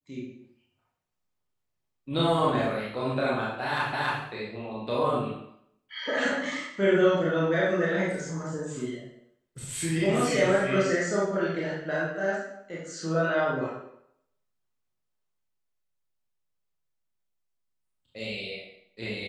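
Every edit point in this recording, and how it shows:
3.93 s: repeat of the last 0.28 s

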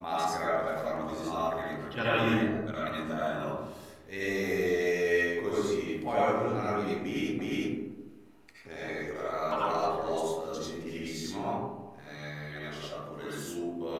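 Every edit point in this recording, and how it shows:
7.39 s: repeat of the last 0.36 s

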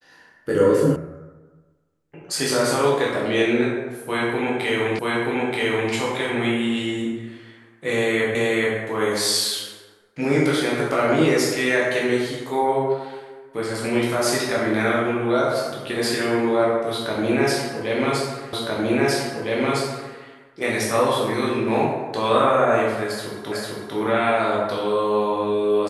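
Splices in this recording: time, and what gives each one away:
0.96 s: sound stops dead
4.99 s: repeat of the last 0.93 s
8.35 s: repeat of the last 0.43 s
18.53 s: repeat of the last 1.61 s
23.52 s: repeat of the last 0.45 s

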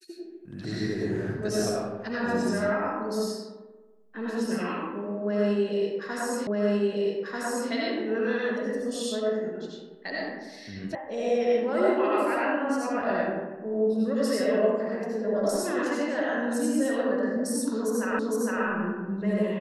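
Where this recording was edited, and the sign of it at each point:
6.47 s: repeat of the last 1.24 s
10.95 s: sound stops dead
18.19 s: repeat of the last 0.46 s

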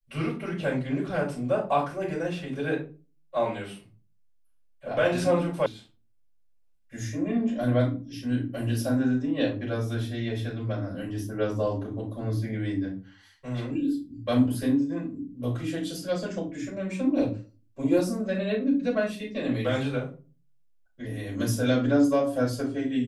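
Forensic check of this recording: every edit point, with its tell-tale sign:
5.66 s: sound stops dead

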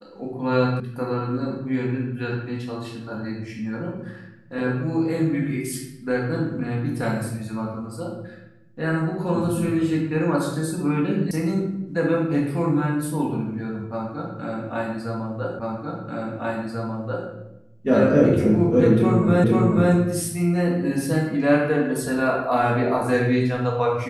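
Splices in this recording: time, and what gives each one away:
0.80 s: sound stops dead
11.31 s: sound stops dead
15.59 s: repeat of the last 1.69 s
19.44 s: repeat of the last 0.49 s

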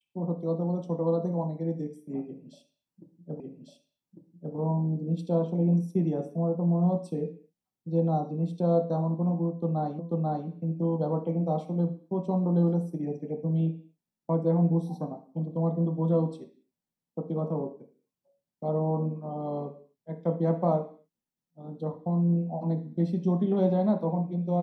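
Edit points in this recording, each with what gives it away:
3.40 s: repeat of the last 1.15 s
9.99 s: repeat of the last 0.49 s

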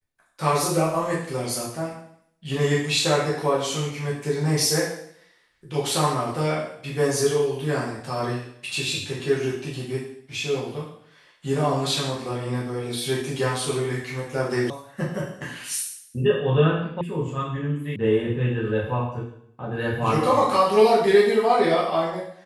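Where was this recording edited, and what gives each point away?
14.70 s: sound stops dead
17.01 s: sound stops dead
17.96 s: sound stops dead

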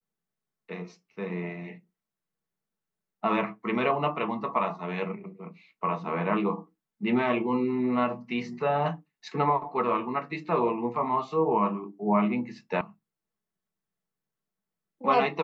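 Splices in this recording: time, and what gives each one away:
12.81 s: sound stops dead

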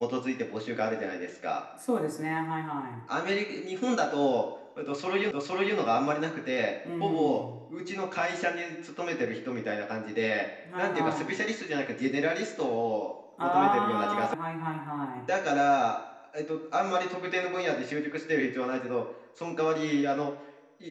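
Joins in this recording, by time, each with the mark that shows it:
5.31 s: repeat of the last 0.46 s
14.34 s: sound stops dead

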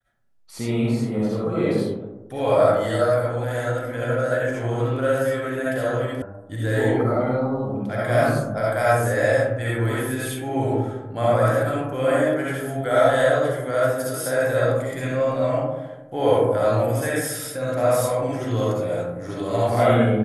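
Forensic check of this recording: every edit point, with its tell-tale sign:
6.22 s: sound stops dead

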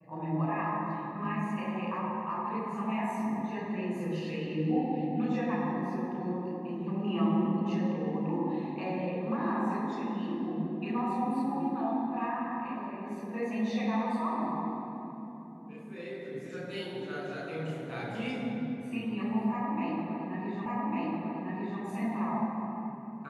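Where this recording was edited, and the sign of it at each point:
20.66 s: repeat of the last 1.15 s

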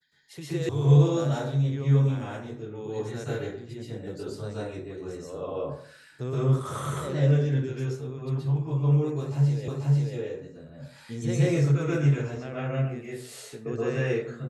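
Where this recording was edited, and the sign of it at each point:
0.69 s: sound stops dead
9.68 s: repeat of the last 0.49 s

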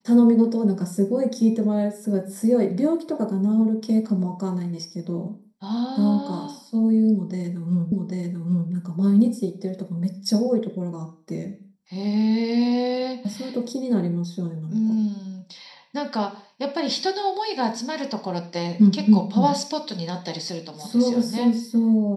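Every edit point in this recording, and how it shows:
7.92 s: repeat of the last 0.79 s

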